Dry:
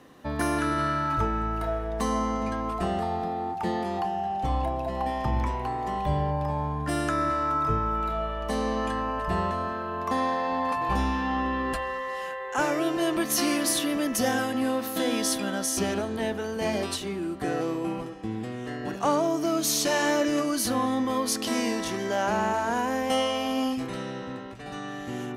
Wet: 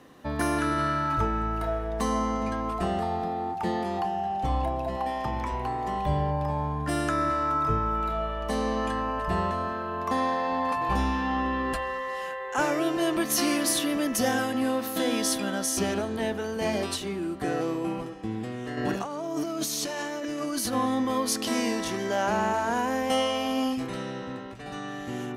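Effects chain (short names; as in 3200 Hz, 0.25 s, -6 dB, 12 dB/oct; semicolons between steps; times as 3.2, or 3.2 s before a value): 4.96–5.52 low shelf 190 Hz -9 dB; 18.77–20.73 negative-ratio compressor -31 dBFS, ratio -1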